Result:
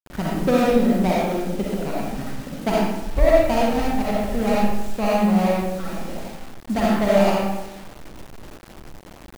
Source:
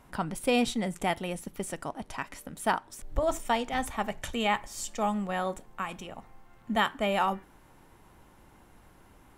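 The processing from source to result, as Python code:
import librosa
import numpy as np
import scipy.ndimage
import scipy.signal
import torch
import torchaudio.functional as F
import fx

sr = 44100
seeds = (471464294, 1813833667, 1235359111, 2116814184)

y = scipy.signal.medfilt(x, 41)
y = fx.rev_freeverb(y, sr, rt60_s=1.0, hf_ratio=0.75, predelay_ms=20, drr_db=-5.5)
y = fx.quant_dither(y, sr, seeds[0], bits=8, dither='none')
y = y * librosa.db_to_amplitude(7.5)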